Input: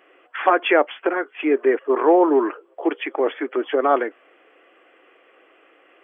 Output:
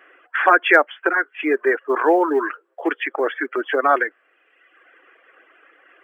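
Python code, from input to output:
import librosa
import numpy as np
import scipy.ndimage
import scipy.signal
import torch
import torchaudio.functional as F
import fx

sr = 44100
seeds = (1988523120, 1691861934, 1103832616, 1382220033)

y = scipy.signal.sosfilt(scipy.signal.butter(2, 180.0, 'highpass', fs=sr, output='sos'), x)
y = fx.dereverb_blind(y, sr, rt60_s=1.1)
y = fx.peak_eq(y, sr, hz=1600.0, db=12.5, octaves=0.74)
y = fx.quant_float(y, sr, bits=6)
y = y * librosa.db_to_amplitude(-1.0)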